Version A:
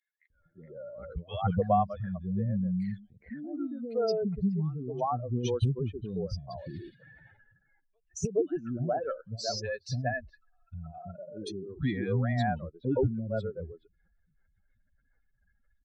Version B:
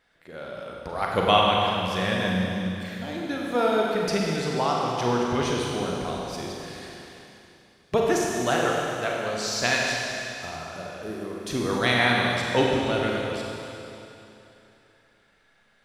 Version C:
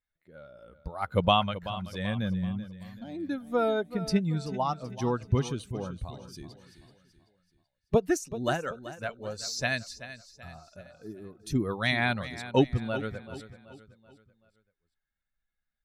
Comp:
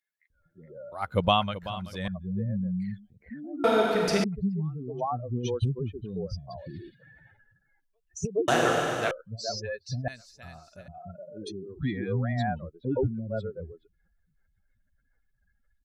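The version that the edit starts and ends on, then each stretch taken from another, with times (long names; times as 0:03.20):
A
0:00.92–0:02.08: punch in from C
0:03.64–0:04.24: punch in from B
0:08.48–0:09.11: punch in from B
0:10.08–0:10.88: punch in from C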